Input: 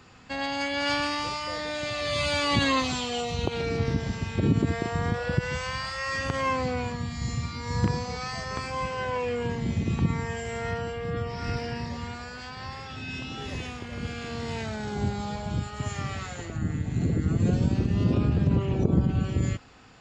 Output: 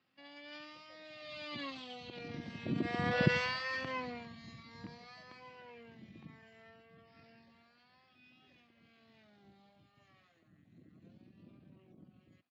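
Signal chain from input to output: Doppler pass-by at 5.21, 11 m/s, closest 2.7 m; tempo 1.6×; speaker cabinet 220–4600 Hz, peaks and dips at 440 Hz -9 dB, 900 Hz -8 dB, 1400 Hz -6 dB; gain +5 dB

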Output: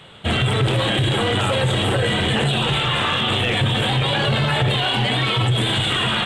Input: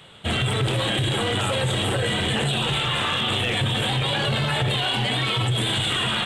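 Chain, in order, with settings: high shelf 5400 Hz -7.5 dB; gain +4.5 dB

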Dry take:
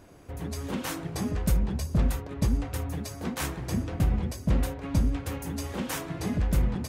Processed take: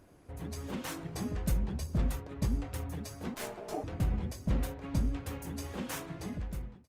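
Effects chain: ending faded out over 0.89 s; 3.34–3.84 ring modulator 530 Hz; gain -6 dB; Opus 32 kbps 48000 Hz

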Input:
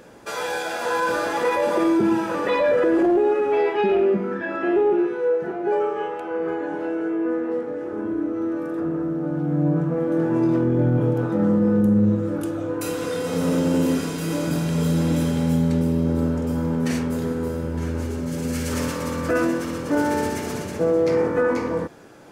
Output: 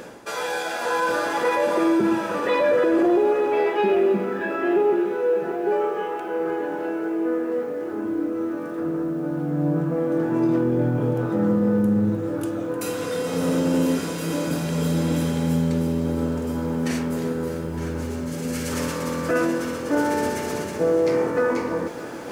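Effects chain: reverse; upward compressor, threshold -26 dBFS; reverse; low shelf 110 Hz -8 dB; lo-fi delay 0.305 s, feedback 80%, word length 8-bit, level -14.5 dB

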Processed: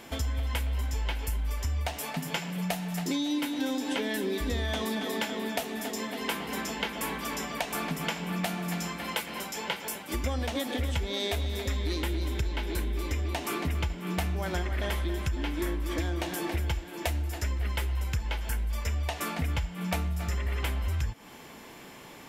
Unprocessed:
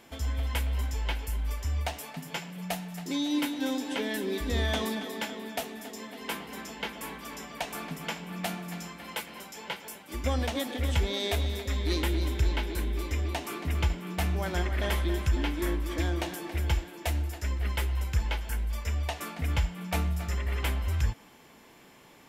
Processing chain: compressor, threshold -35 dBFS, peak gain reduction 14 dB; gain +7.5 dB

